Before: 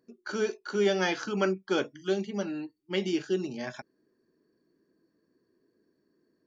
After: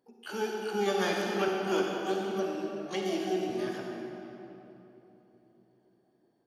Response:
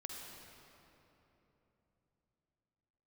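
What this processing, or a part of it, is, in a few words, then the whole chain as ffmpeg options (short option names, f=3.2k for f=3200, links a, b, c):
shimmer-style reverb: -filter_complex "[0:a]asettb=1/sr,asplit=3[a][b][c];[a]atrim=end=1.484[d];[b]atrim=start=1.48:end=3.5,asetpts=PTS-STARTPTS,afade=t=in:d=0.004:c=qsin,afade=t=out:st=2.016:d=0.004:c=qsin,highpass=190[e];[c]atrim=start=3.496[f];[d][e]acrossfade=d=0.004:c1=hsin:c2=qsin[g];[g][f]acrossfade=d=0.004:c1=qsin:c2=hsin,asplit=2[h][i];[i]asetrate=88200,aresample=44100,atempo=0.5,volume=-7dB[j];[h][j]amix=inputs=2:normalize=0[k];[1:a]atrim=start_sample=2205[l];[k][l]afir=irnorm=-1:irlink=0"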